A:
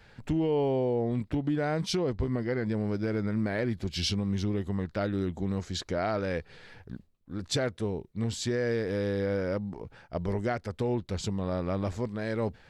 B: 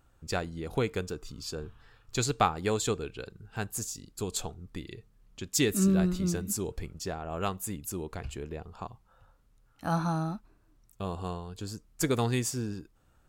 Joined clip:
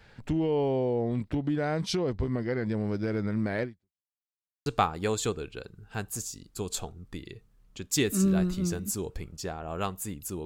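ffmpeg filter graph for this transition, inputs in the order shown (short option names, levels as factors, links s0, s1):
-filter_complex "[0:a]apad=whole_dur=10.45,atrim=end=10.45,asplit=2[s0][s1];[s0]atrim=end=4.09,asetpts=PTS-STARTPTS,afade=t=out:st=3.63:d=0.46:c=exp[s2];[s1]atrim=start=4.09:end=4.66,asetpts=PTS-STARTPTS,volume=0[s3];[1:a]atrim=start=2.28:end=8.07,asetpts=PTS-STARTPTS,afade=t=in:d=0.004:c=hsin[s4];[s2][s3][s4]concat=n=3:v=0:a=1"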